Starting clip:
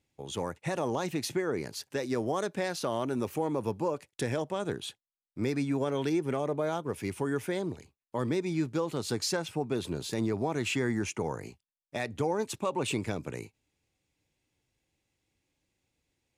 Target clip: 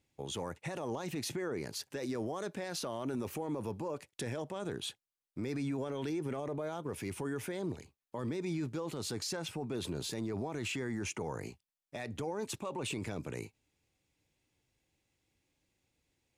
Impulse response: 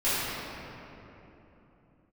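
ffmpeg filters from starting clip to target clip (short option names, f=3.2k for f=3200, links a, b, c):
-af "alimiter=level_in=5dB:limit=-24dB:level=0:latency=1:release=24,volume=-5dB"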